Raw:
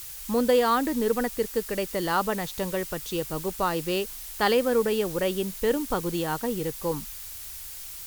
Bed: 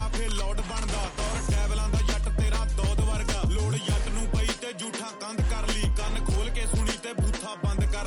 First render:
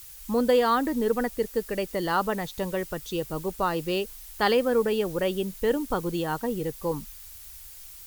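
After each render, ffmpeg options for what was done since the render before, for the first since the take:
-af "afftdn=nr=7:nf=-40"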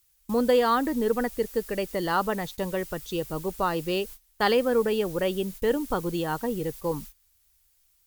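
-af "agate=range=-21dB:threshold=-39dB:ratio=16:detection=peak"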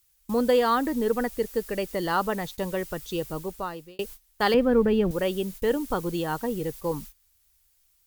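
-filter_complex "[0:a]asettb=1/sr,asplit=3[a][b][c];[a]atrim=end=4.544[d];[b]atrim=start=4.54:end=5.11,asetpts=PTS-STARTPTS,afade=t=in:d=0.004:c=qsin,afade=t=out:st=0.566:d=0.004:c=qsin,bass=f=250:g=13,treble=f=4k:g=-13[e];[c]atrim=start=5.106[f];[d][e]acrossfade=d=0.004:c1=hsin:c2=qsin[g];[g][f]acrossfade=d=0.004:c1=qsin:c2=hsin,asplit=2[h][i];[h]atrim=end=3.99,asetpts=PTS-STARTPTS,afade=t=out:st=3.27:d=0.72[j];[i]atrim=start=3.99,asetpts=PTS-STARTPTS,afade=t=in:d=0.004:c=hsin[k];[j][k]concat=n=2:v=0:a=1"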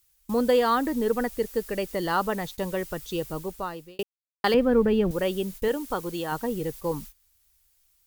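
-filter_complex "[0:a]asettb=1/sr,asplit=3[a][b][c];[a]atrim=end=5.684[d];[b]atrim=start=5.68:end=6.32,asetpts=PTS-STARTPTS,afade=t=in:d=0.004:c=qsin,afade=t=out:st=0.636:d=0.004:c=qsin,lowshelf=f=280:g=-7.5[e];[c]atrim=start=6.316[f];[d][e]acrossfade=d=0.004:c1=hsin:c2=qsin[g];[g][f]acrossfade=d=0.004:c1=qsin:c2=hsin,asplit=3[h][i][j];[h]atrim=end=4.03,asetpts=PTS-STARTPTS,afade=t=out:st=4.026:d=0.004:c=hsin[k];[i]atrim=start=4.03:end=4.44,asetpts=PTS-STARTPTS,volume=0[l];[j]atrim=start=4.44,asetpts=PTS-STARTPTS,afade=t=in:d=0.004:c=hsin[m];[k][l][m]concat=n=3:v=0:a=1"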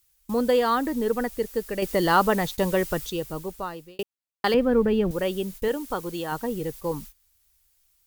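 -filter_complex "[0:a]asettb=1/sr,asplit=3[a][b][c];[a]atrim=end=1.824[d];[b]atrim=start=1.82:end=3.1,asetpts=PTS-STARTPTS,afade=t=in:d=0.004:c=qsin,afade=t=out:st=1.276:d=0.004:c=qsin,acontrast=55[e];[c]atrim=start=3.096[f];[d][e]acrossfade=d=0.004:c1=hsin:c2=qsin[g];[g][f]acrossfade=d=0.004:c1=qsin:c2=hsin"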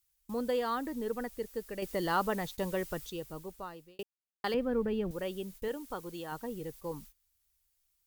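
-af "volume=-10.5dB"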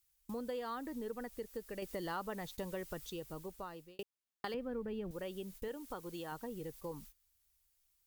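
-af "acompressor=threshold=-42dB:ratio=2.5"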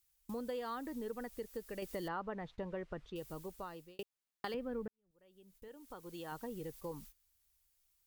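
-filter_complex "[0:a]asettb=1/sr,asplit=3[a][b][c];[a]atrim=end=2.084[d];[b]atrim=start=2.08:end=3.16,asetpts=PTS-STARTPTS,afade=t=in:d=0.004:c=qsin,afade=t=out:st=1.076:d=0.004:c=qsin,lowpass=2.1k[e];[c]atrim=start=3.156[f];[d][e]acrossfade=d=0.004:c1=hsin:c2=qsin[g];[g][f]acrossfade=d=0.004:c1=qsin:c2=hsin,asplit=2[h][i];[h]atrim=end=4.88,asetpts=PTS-STARTPTS,afade=t=out:st=4.876:d=0.004:c=hsin[j];[i]atrim=start=4.88,asetpts=PTS-STARTPTS,afade=t=in:d=1.49:c=qua[k];[j][k]concat=n=2:v=0:a=1"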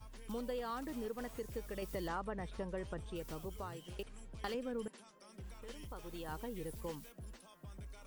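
-filter_complex "[1:a]volume=-25dB[a];[0:a][a]amix=inputs=2:normalize=0"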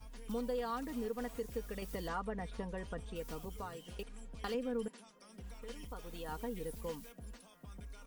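-af "aecho=1:1:4.2:0.53"

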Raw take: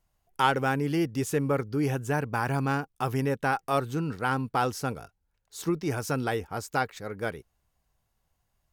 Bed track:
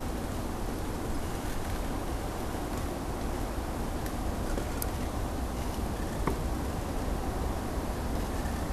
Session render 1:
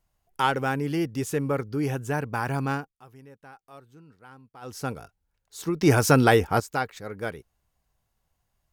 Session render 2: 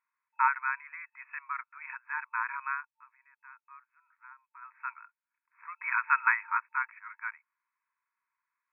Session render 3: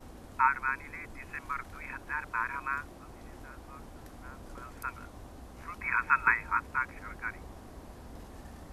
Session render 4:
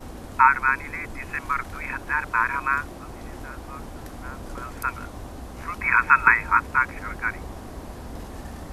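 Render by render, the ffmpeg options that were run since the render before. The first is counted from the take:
-filter_complex "[0:a]asplit=5[a][b][c][d][e];[a]atrim=end=2.96,asetpts=PTS-STARTPTS,afade=t=out:st=2.73:d=0.23:silence=0.0841395[f];[b]atrim=start=2.96:end=4.61,asetpts=PTS-STARTPTS,volume=-21.5dB[g];[c]atrim=start=4.61:end=5.812,asetpts=PTS-STARTPTS,afade=t=in:d=0.23:silence=0.0841395[h];[d]atrim=start=5.808:end=6.602,asetpts=PTS-STARTPTS,volume=11dB[i];[e]atrim=start=6.598[j];[f][g][h]concat=n=3:v=0:a=1[k];[k][i]acrossfade=d=0.004:c1=hsin:c2=hsin[l];[l][j]acrossfade=d=0.004:c1=hsin:c2=hsin"
-af "afftfilt=real='re*between(b*sr/4096,900,2600)':imag='im*between(b*sr/4096,900,2600)':win_size=4096:overlap=0.75"
-filter_complex "[1:a]volume=-15dB[a];[0:a][a]amix=inputs=2:normalize=0"
-af "volume=10.5dB,alimiter=limit=-3dB:level=0:latency=1"

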